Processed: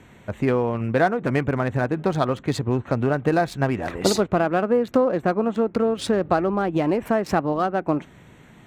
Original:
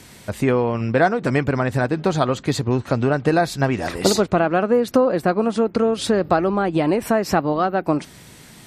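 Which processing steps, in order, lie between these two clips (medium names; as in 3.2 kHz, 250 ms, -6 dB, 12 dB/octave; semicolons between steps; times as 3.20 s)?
local Wiener filter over 9 samples; trim -2.5 dB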